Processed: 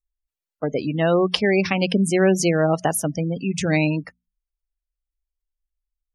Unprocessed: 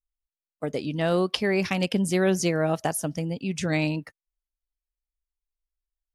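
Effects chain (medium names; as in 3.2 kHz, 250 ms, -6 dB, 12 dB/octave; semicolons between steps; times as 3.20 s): hum notches 60/120/180/240 Hz; spectral gate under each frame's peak -25 dB strong; trim +5.5 dB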